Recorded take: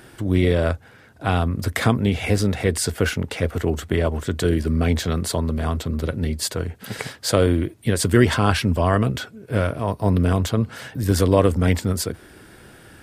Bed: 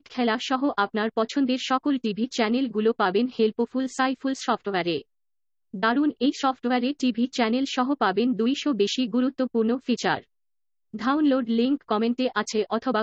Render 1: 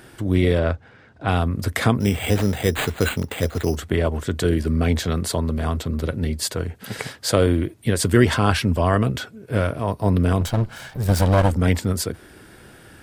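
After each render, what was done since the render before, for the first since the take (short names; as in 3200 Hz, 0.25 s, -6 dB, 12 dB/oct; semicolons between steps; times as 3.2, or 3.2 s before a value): 0.59–1.28 air absorption 110 m; 2–3.76 careless resampling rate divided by 8×, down none, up hold; 10.41–11.51 minimum comb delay 1.3 ms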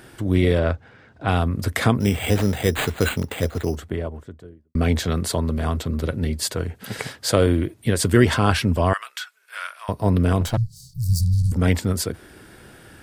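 3.2–4.75 studio fade out; 8.93–9.89 HPF 1200 Hz 24 dB/oct; 10.57–11.52 Chebyshev band-stop 170–4400 Hz, order 5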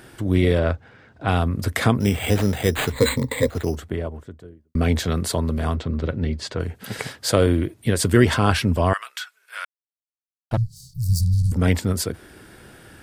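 2.92–3.49 ripple EQ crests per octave 1, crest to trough 16 dB; 5.75–6.6 air absorption 130 m; 9.65–10.51 mute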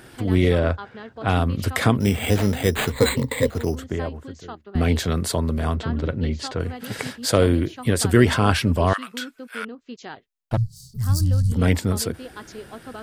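add bed -13.5 dB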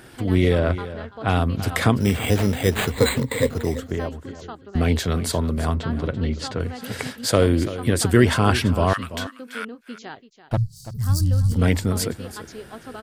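echo 0.336 s -14 dB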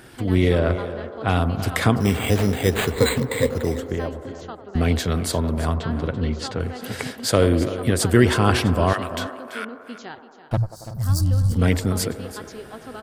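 band-limited delay 93 ms, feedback 79%, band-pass 650 Hz, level -12 dB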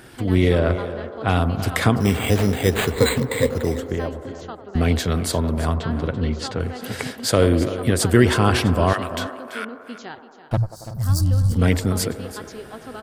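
gain +1 dB; limiter -3 dBFS, peak gain reduction 2.5 dB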